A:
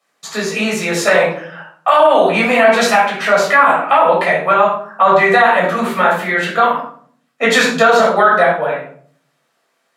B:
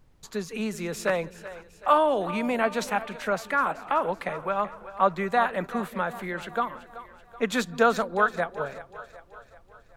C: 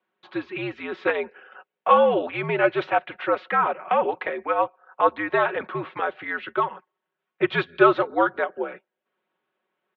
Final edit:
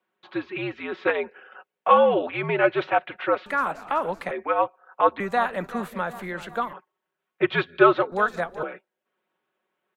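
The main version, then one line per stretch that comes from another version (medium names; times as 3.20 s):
C
3.46–4.31 s: from B
5.20–6.73 s: from B
8.12–8.63 s: from B
not used: A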